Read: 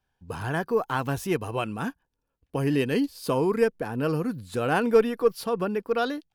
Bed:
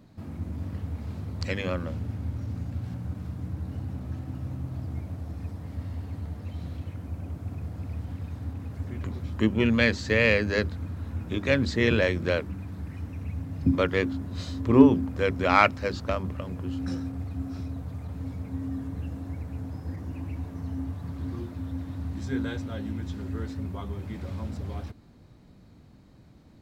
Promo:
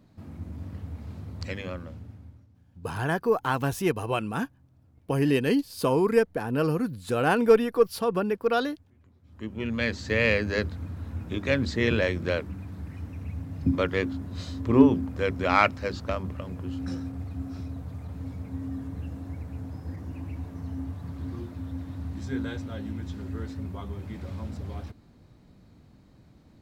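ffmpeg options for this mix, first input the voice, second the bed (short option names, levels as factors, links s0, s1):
-filter_complex "[0:a]adelay=2550,volume=1.12[s0];[1:a]volume=10.6,afade=t=out:st=1.48:d=1:silence=0.0794328,afade=t=in:st=9.23:d=1:silence=0.0595662[s1];[s0][s1]amix=inputs=2:normalize=0"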